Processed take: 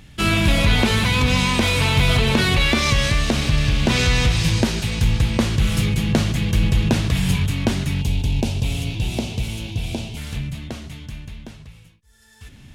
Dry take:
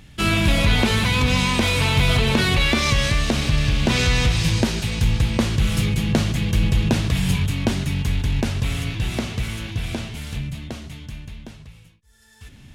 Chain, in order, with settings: 8.01–10.17 band shelf 1500 Hz -12 dB 1.1 oct; gain +1 dB

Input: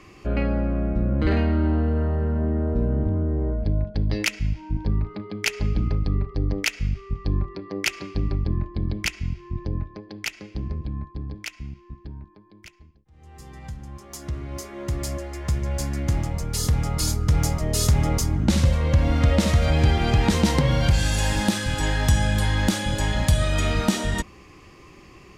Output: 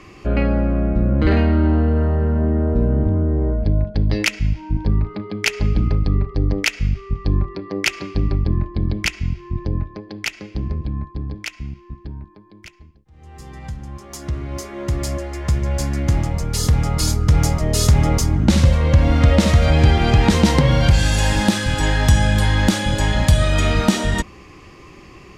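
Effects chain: high shelf 8900 Hz -6 dB; gain +5.5 dB

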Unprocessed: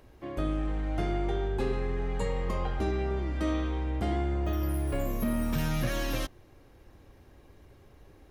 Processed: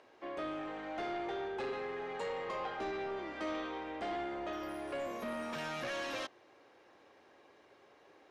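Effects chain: HPF 500 Hz 12 dB/oct; soft clip -35 dBFS, distortion -13 dB; air absorption 97 m; gain +2 dB

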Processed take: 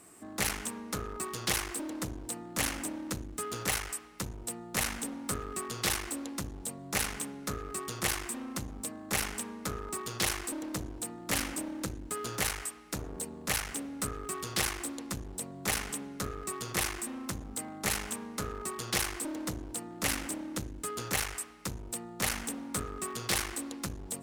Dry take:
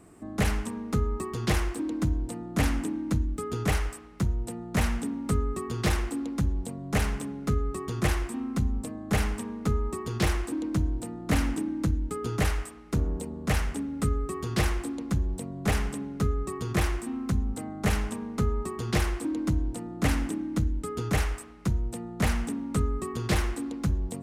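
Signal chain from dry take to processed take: one-sided clip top -32.5 dBFS; tilt +3 dB/oct; gain -1 dB

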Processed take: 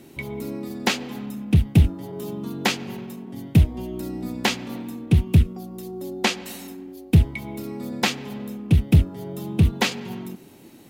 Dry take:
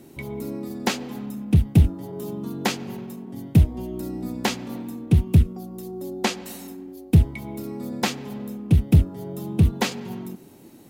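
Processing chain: bell 2700 Hz +5.5 dB 1.7 oct

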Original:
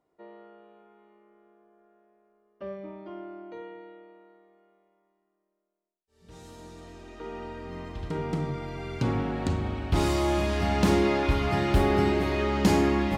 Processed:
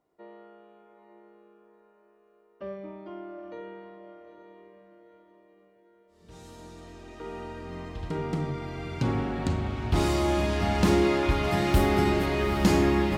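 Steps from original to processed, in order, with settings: 11.44–12.26 high shelf 8500 Hz +11.5 dB; diffused feedback echo 0.854 s, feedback 47%, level -9 dB

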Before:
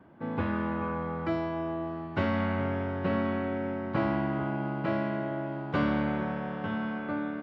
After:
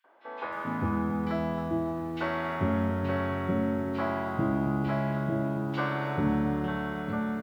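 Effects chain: three bands offset in time highs, mids, lows 40/440 ms, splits 480/2500 Hz; lo-fi delay 0.275 s, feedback 35%, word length 9-bit, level -11 dB; gain +2 dB

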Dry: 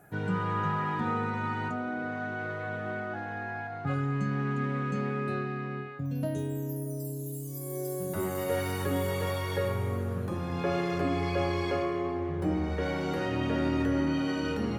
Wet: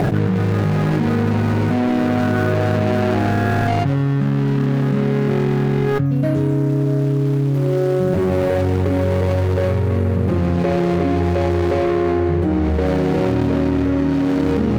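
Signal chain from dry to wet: median filter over 41 samples; high shelf 5000 Hz -7 dB; fast leveller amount 100%; gain +9 dB

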